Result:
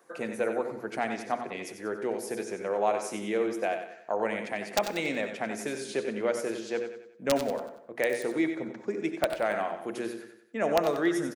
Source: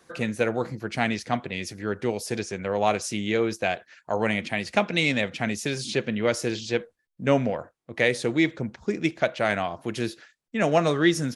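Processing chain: high-pass 340 Hz 12 dB/octave; peaking EQ 4 kHz -13 dB 2.2 oct; hum notches 60/120/180/240/300/360/420/480 Hz; in parallel at -2.5 dB: compression 5:1, threshold -33 dBFS, peak gain reduction 14 dB; on the sum: integer overflow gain 11 dB; feedback delay 93 ms, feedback 43%, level -9 dB; on a send at -12.5 dB: reverberation RT60 0.45 s, pre-delay 60 ms; on the sum: trim -3.5 dB

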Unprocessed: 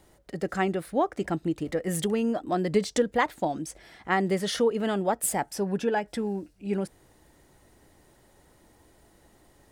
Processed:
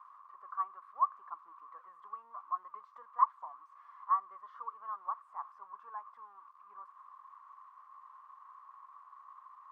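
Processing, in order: zero-crossing glitches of -21 dBFS; Butterworth band-pass 1.1 kHz, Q 7.8; trim +6.5 dB

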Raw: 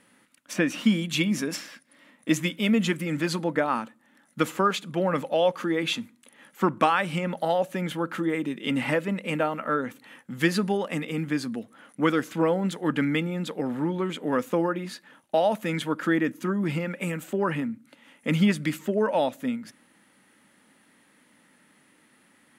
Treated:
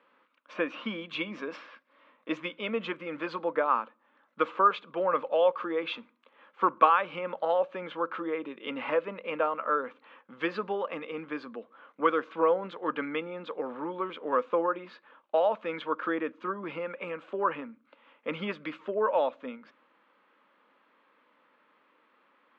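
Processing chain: cabinet simulation 490–3000 Hz, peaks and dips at 490 Hz +5 dB, 750 Hz -4 dB, 1.1 kHz +8 dB, 1.9 kHz -9 dB, 2.9 kHz -3 dB; trim -1.5 dB

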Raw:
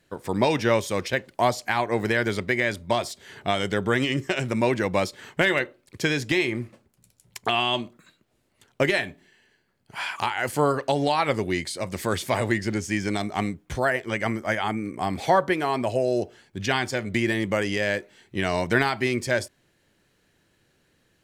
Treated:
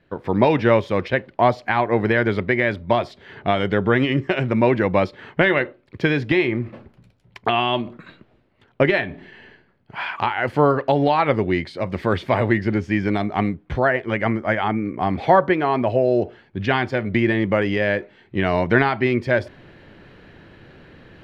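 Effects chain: reverse; upward compressor, threshold -36 dBFS; reverse; distance through air 360 m; trim +6.5 dB

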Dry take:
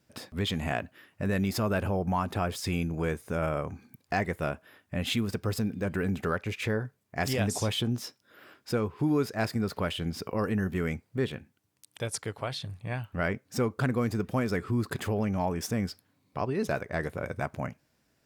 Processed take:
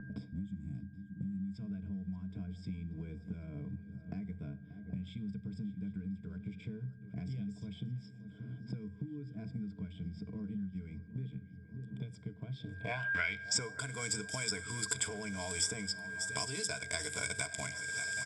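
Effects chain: time-frequency box 0.31–1.54 s, 360–6000 Hz -16 dB; in parallel at -10.5 dB: small samples zeroed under -34.5 dBFS; on the sum: rippled EQ curve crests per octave 1.7, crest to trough 16 dB; compression 4:1, threshold -31 dBFS, peak gain reduction 15 dB; pre-emphasis filter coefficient 0.9; whistle 1.6 kHz -54 dBFS; low-pass sweep 180 Hz -> 8.7 kHz, 12.51–13.62 s; shuffle delay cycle 777 ms, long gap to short 3:1, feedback 39%, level -19 dB; on a send at -16.5 dB: reverberation RT60 0.70 s, pre-delay 4 ms; on the sum: resampled via 22.05 kHz; three bands compressed up and down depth 100%; trim +8 dB

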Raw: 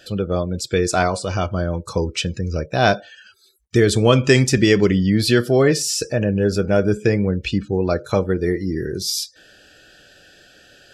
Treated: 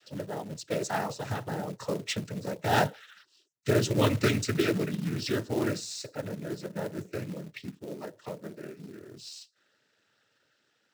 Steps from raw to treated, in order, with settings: Doppler pass-by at 2.73 s, 19 m/s, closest 26 m; noise-vocoded speech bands 12; short-mantissa float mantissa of 2-bit; trim -7.5 dB

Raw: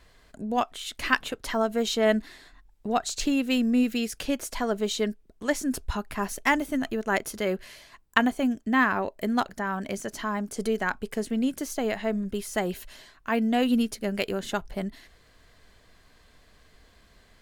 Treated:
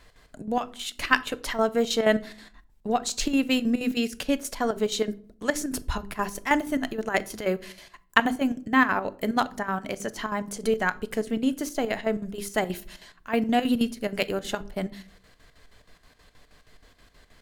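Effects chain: hum notches 50/100/150/200/250/300/350/400 Hz; square tremolo 6.3 Hz, depth 65%, duty 65%; simulated room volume 580 m³, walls furnished, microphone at 0.38 m; trim +2.5 dB

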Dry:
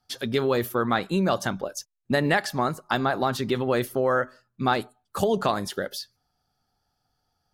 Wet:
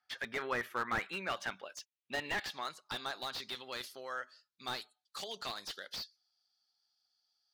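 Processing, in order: band-pass sweep 1.9 kHz -> 4.4 kHz, 0.66–3.42 s; slew-rate limiter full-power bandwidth 32 Hz; trim +3 dB

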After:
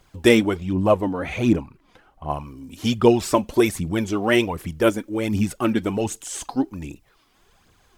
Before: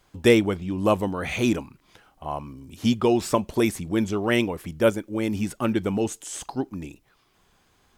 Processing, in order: 0.73–2.30 s: treble shelf 2.7 kHz -11.5 dB; phaser 1.3 Hz, delay 4.3 ms, feedback 50%; trim +2 dB

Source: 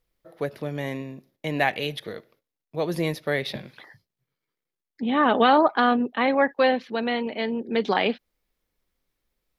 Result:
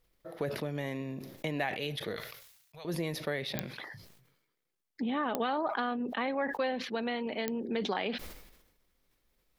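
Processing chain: compression 3:1, threshold -37 dBFS, peak gain reduction 17.5 dB; 2.16–2.85 s: amplifier tone stack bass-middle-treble 10-0-10; clicks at 3.59/5.35/7.48 s, -19 dBFS; decay stretcher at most 61 dB/s; trim +2.5 dB

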